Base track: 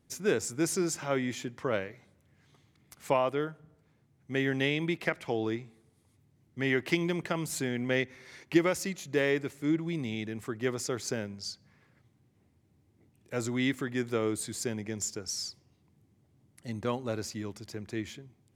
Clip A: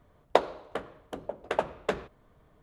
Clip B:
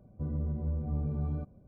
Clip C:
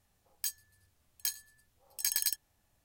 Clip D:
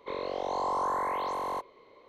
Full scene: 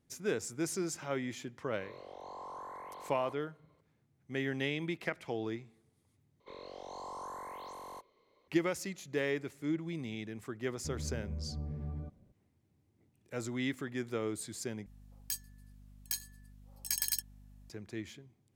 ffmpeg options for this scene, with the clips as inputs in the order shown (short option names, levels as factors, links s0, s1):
-filter_complex "[4:a]asplit=2[s0][s1];[0:a]volume=0.501[s2];[s1]bass=f=250:g=5,treble=f=4000:g=11[s3];[3:a]aeval=exprs='val(0)+0.00251*(sin(2*PI*50*n/s)+sin(2*PI*2*50*n/s)/2+sin(2*PI*3*50*n/s)/3+sin(2*PI*4*50*n/s)/4+sin(2*PI*5*50*n/s)/5)':c=same[s4];[s2]asplit=3[s5][s6][s7];[s5]atrim=end=6.404[s8];[s3]atrim=end=2.08,asetpts=PTS-STARTPTS,volume=0.188[s9];[s6]atrim=start=8.476:end=14.864[s10];[s4]atrim=end=2.84,asetpts=PTS-STARTPTS,volume=0.75[s11];[s7]atrim=start=17.696[s12];[s0]atrim=end=2.08,asetpts=PTS-STARTPTS,volume=0.158,afade=t=in:d=0.004:c=hsin,afade=t=out:st=2.076:d=0.004:c=hsin,adelay=1730[s13];[2:a]atrim=end=1.67,asetpts=PTS-STARTPTS,volume=0.422,afade=t=in:d=0.004:c=hsin,afade=t=out:st=1.666:d=0.004:c=hsin,adelay=10650[s14];[s8][s9]acrossfade=d=0.004:c1=hsin:c2=hsin[s15];[s15][s10]acrossfade=d=0.004:c1=hsin:c2=hsin[s16];[s16][s11]acrossfade=d=0.004:c1=hsin:c2=hsin[s17];[s17][s12]acrossfade=d=0.004:c1=hsin:c2=hsin[s18];[s18][s13][s14]amix=inputs=3:normalize=0"